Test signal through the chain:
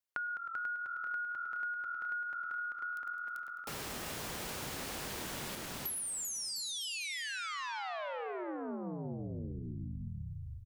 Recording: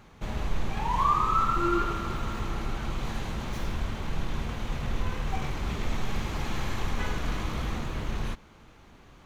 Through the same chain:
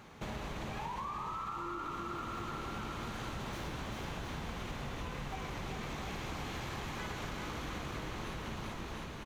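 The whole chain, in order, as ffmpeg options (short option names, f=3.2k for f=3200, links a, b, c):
-filter_complex "[0:a]highpass=f=140:p=1,asplit=2[a][b];[b]asplit=6[c][d][e][f][g][h];[c]adelay=105,afreqshift=-42,volume=-12dB[i];[d]adelay=210,afreqshift=-84,volume=-17dB[j];[e]adelay=315,afreqshift=-126,volume=-22.1dB[k];[f]adelay=420,afreqshift=-168,volume=-27.1dB[l];[g]adelay=525,afreqshift=-210,volume=-32.1dB[m];[h]adelay=630,afreqshift=-252,volume=-37.2dB[n];[i][j][k][l][m][n]amix=inputs=6:normalize=0[o];[a][o]amix=inputs=2:normalize=0,alimiter=limit=-23dB:level=0:latency=1:release=46,asplit=2[p][q];[q]aecho=0:1:390|702|951.6|1151|1311:0.631|0.398|0.251|0.158|0.1[r];[p][r]amix=inputs=2:normalize=0,acompressor=threshold=-38dB:ratio=10,volume=1dB"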